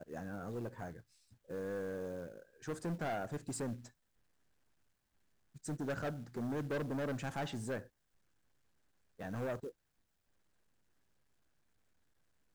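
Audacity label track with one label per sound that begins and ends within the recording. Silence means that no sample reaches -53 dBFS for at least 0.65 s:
5.560000	7.870000	sound
9.190000	9.710000	sound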